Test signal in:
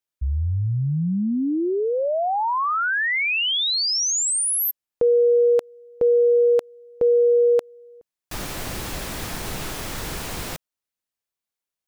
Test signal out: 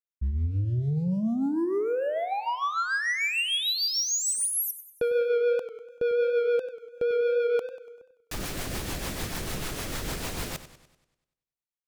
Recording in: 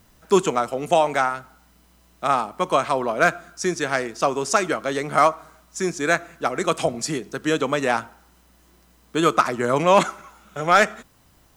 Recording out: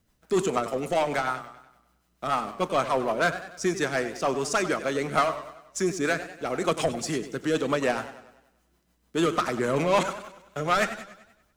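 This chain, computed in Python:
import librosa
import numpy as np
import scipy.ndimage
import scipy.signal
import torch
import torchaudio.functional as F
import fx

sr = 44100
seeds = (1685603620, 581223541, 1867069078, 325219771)

y = fx.leveller(x, sr, passes=2)
y = fx.rotary(y, sr, hz=6.7)
y = fx.echo_warbled(y, sr, ms=97, feedback_pct=50, rate_hz=2.8, cents=116, wet_db=-13.0)
y = y * librosa.db_to_amplitude(-7.5)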